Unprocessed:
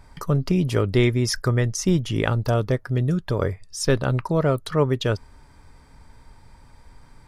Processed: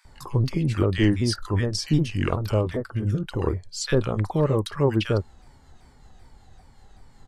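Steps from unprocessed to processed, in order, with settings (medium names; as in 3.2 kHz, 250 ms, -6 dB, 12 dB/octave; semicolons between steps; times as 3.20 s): sawtooth pitch modulation -4 st, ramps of 387 ms; bands offset in time highs, lows 50 ms, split 1.3 kHz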